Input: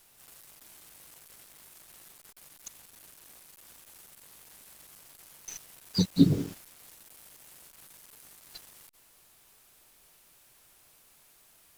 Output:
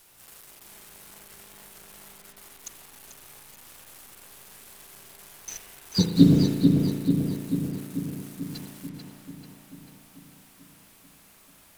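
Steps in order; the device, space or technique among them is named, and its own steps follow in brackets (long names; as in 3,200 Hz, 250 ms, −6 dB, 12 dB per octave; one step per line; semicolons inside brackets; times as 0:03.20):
dub delay into a spring reverb (feedback echo with a low-pass in the loop 440 ms, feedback 63%, low-pass 3,800 Hz, level −4 dB; spring reverb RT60 1.2 s, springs 35 ms, chirp 80 ms, DRR 3 dB)
level +4 dB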